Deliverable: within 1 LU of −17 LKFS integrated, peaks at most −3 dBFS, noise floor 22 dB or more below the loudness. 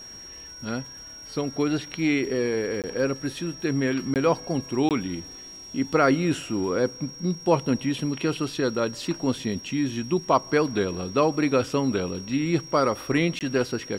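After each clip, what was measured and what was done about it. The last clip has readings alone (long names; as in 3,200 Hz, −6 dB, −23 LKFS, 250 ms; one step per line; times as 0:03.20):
number of dropouts 4; longest dropout 18 ms; interfering tone 5,600 Hz; level of the tone −40 dBFS; integrated loudness −25.5 LKFS; sample peak −6.5 dBFS; target loudness −17.0 LKFS
→ repair the gap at 0:02.82/0:04.14/0:04.89/0:13.39, 18 ms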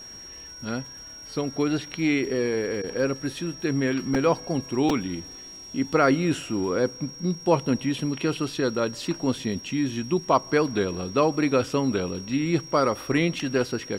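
number of dropouts 0; interfering tone 5,600 Hz; level of the tone −40 dBFS
→ notch filter 5,600 Hz, Q 30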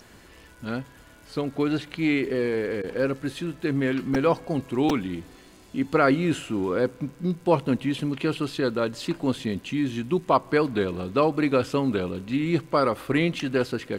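interfering tone none found; integrated loudness −25.5 LKFS; sample peak −6.5 dBFS; target loudness −17.0 LKFS
→ level +8.5 dB
brickwall limiter −3 dBFS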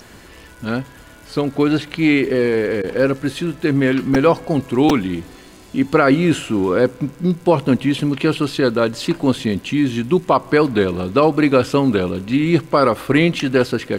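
integrated loudness −17.5 LKFS; sample peak −3.0 dBFS; background noise floor −42 dBFS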